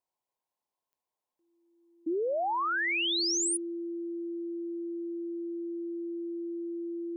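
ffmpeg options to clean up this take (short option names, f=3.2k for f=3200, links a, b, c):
-af "adeclick=t=4,bandreject=f=340:w=30,afftdn=nr=6:nf=-80"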